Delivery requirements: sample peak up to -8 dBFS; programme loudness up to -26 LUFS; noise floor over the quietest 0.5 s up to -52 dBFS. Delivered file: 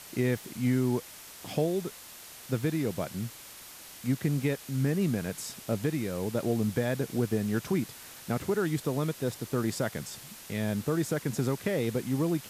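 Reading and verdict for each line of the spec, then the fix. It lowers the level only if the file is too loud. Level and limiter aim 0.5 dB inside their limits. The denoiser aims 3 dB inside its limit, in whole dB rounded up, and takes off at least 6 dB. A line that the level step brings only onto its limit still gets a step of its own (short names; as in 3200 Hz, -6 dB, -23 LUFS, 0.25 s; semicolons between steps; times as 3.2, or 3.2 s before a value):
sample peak -15.0 dBFS: OK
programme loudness -31.0 LUFS: OK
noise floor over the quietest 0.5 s -48 dBFS: fail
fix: denoiser 7 dB, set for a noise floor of -48 dBFS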